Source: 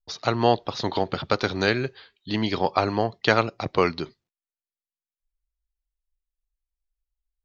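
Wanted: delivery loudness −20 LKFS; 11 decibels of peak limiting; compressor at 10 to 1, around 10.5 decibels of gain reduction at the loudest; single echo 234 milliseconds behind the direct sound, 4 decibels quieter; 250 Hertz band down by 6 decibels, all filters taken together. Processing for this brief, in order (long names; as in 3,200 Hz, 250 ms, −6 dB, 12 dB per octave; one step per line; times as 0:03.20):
parametric band 250 Hz −8.5 dB
downward compressor 10 to 1, threshold −25 dBFS
brickwall limiter −21 dBFS
single-tap delay 234 ms −4 dB
level +14 dB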